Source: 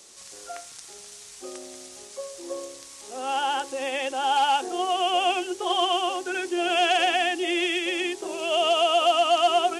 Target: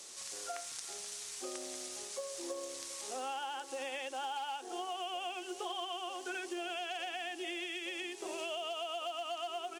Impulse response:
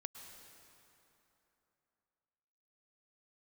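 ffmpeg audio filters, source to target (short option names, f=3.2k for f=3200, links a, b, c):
-filter_complex "[0:a]lowshelf=f=490:g=-5,aecho=1:1:391:0.0794,acompressor=threshold=-37dB:ratio=12,lowshelf=f=120:g=-3.5,acrusher=bits=8:mode=log:mix=0:aa=0.000001[a];[1:a]atrim=start_sample=2205,atrim=end_sample=3528,asetrate=37044,aresample=44100[b];[a][b]afir=irnorm=-1:irlink=0,volume=4dB"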